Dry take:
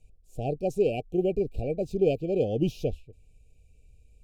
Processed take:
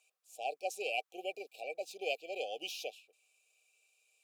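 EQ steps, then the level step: ladder high-pass 980 Hz, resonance 55%; +14.0 dB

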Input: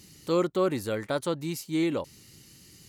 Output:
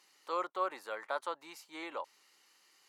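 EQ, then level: ladder high-pass 770 Hz, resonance 35%; tilt EQ -4 dB/octave; +4.0 dB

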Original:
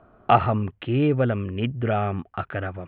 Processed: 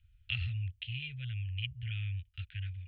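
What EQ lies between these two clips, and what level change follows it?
inverse Chebyshev band-stop 200–1200 Hz, stop band 50 dB; 0.0 dB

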